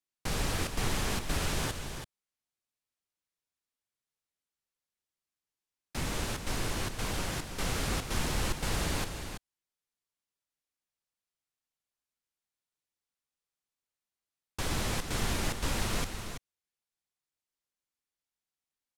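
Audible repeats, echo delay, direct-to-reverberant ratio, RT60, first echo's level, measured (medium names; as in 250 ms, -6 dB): 2, 189 ms, no reverb, no reverb, -15.0 dB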